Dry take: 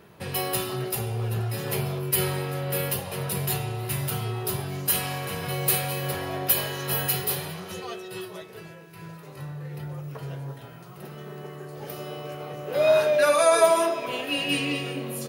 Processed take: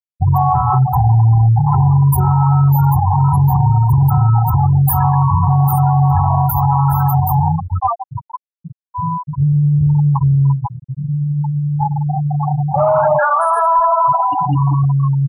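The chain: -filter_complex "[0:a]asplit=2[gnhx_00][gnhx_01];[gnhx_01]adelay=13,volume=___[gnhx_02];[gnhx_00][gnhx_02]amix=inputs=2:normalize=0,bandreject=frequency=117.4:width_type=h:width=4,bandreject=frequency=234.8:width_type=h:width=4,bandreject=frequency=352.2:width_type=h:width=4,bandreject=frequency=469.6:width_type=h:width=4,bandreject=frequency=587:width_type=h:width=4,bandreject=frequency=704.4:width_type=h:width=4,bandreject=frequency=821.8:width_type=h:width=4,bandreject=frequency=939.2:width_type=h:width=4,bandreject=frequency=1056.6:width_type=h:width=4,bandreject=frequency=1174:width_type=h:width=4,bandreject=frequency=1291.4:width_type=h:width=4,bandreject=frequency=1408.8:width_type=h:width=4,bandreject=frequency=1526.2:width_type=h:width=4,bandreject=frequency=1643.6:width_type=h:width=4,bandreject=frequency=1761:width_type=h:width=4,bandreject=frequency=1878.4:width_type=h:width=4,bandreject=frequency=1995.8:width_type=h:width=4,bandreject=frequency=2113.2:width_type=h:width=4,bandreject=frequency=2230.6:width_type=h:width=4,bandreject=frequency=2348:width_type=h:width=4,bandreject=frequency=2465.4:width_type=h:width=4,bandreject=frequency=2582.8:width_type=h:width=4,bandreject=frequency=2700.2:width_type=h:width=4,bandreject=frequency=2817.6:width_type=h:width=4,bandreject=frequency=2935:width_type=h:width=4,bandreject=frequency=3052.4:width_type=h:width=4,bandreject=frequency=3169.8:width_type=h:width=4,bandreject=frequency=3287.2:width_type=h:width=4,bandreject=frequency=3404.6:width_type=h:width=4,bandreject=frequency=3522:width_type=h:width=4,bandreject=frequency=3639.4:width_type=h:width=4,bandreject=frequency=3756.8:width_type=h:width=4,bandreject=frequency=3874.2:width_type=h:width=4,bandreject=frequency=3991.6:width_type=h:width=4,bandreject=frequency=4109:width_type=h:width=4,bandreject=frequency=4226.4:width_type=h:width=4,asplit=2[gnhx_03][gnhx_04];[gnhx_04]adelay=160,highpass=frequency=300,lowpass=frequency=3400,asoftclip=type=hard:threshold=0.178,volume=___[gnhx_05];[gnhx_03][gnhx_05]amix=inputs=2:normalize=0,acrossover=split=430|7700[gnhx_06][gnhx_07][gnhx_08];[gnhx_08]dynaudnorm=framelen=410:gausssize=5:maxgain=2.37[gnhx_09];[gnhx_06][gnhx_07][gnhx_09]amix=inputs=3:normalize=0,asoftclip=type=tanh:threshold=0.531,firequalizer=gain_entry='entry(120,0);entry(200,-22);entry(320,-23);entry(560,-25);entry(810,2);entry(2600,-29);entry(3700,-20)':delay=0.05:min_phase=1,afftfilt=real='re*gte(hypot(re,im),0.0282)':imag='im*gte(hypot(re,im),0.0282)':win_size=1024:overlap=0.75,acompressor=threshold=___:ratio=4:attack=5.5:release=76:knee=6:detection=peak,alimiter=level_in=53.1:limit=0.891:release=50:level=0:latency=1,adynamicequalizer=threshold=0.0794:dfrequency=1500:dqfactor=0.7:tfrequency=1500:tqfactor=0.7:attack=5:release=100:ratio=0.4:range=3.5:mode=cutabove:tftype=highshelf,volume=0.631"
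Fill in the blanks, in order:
0.355, 0.355, 0.01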